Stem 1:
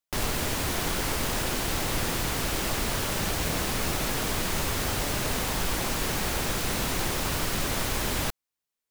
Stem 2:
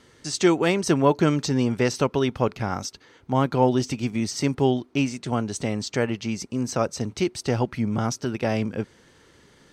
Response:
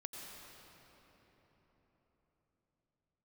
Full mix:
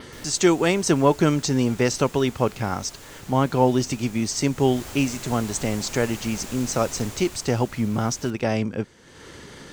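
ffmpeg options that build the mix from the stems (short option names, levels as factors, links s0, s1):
-filter_complex "[0:a]volume=0.266,afade=t=in:st=4.55:d=0.33:silence=0.446684,afade=t=out:st=7:d=0.52:silence=0.421697,asplit=2[s0][s1];[s1]volume=0.473[s2];[1:a]acompressor=mode=upward:threshold=0.0282:ratio=2.5,volume=1.12[s3];[2:a]atrim=start_sample=2205[s4];[s2][s4]afir=irnorm=-1:irlink=0[s5];[s0][s3][s5]amix=inputs=3:normalize=0,adynamicequalizer=threshold=0.00398:dfrequency=7100:dqfactor=2.5:tfrequency=7100:tqfactor=2.5:attack=5:release=100:ratio=0.375:range=3.5:mode=boostabove:tftype=bell"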